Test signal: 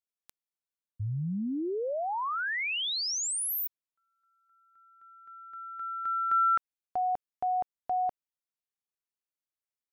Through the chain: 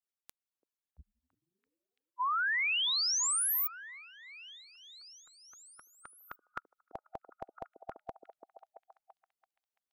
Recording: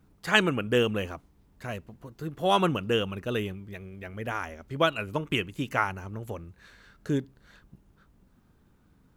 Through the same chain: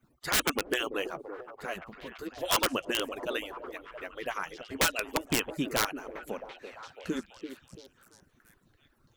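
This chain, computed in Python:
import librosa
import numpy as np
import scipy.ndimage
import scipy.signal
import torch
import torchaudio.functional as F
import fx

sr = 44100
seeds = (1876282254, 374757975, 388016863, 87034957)

y = fx.hpss_only(x, sr, part='percussive')
y = (np.mod(10.0 ** (18.5 / 20.0) * y + 1.0, 2.0) - 1.0) / 10.0 ** (18.5 / 20.0)
y = fx.echo_stepped(y, sr, ms=336, hz=380.0, octaves=0.7, feedback_pct=70, wet_db=-7.0)
y = y * 10.0 ** (1.0 / 20.0)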